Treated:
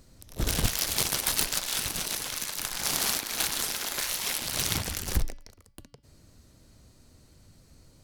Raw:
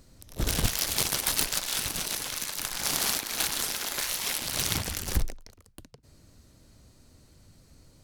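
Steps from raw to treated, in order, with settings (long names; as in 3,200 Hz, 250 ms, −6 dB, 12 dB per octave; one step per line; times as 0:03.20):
hum removal 285.4 Hz, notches 20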